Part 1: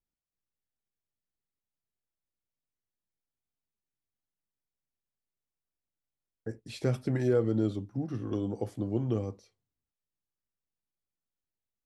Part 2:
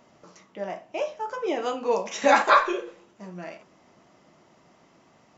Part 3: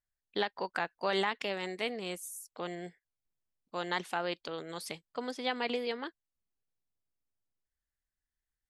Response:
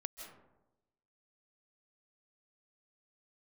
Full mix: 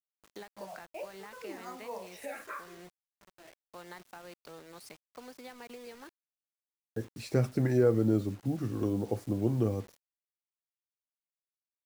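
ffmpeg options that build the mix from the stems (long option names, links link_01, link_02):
-filter_complex "[0:a]adelay=500,volume=1.5dB[link_01];[1:a]bandreject=frequency=60:width_type=h:width=6,bandreject=frequency=120:width_type=h:width=6,bandreject=frequency=180:width_type=h:width=6,bandreject=frequency=240:width_type=h:width=6,bandreject=frequency=300:width_type=h:width=6,bandreject=frequency=360:width_type=h:width=6,bandreject=frequency=420:width_type=h:width=6,bandreject=frequency=480:width_type=h:width=6,bandreject=frequency=540:width_type=h:width=6,asplit=2[link_02][link_03];[link_03]afreqshift=-0.85[link_04];[link_02][link_04]amix=inputs=2:normalize=1,volume=-8dB,afade=type=out:start_time=2.12:duration=0.45:silence=0.421697[link_05];[2:a]acrossover=split=170[link_06][link_07];[link_07]acompressor=threshold=-35dB:ratio=5[link_08];[link_06][link_08]amix=inputs=2:normalize=0,volume=-8.5dB,asplit=2[link_09][link_10];[link_10]apad=whole_len=237118[link_11];[link_05][link_11]sidechaincompress=threshold=-47dB:ratio=8:attack=47:release=548[link_12];[link_12][link_09]amix=inputs=2:normalize=0,alimiter=level_in=7dB:limit=-24dB:level=0:latency=1:release=370,volume=-7dB,volume=0dB[link_13];[link_01][link_13]amix=inputs=2:normalize=0,equalizer=frequency=3300:width_type=o:width=0.3:gain=-11.5,acrusher=bits=8:mix=0:aa=0.000001"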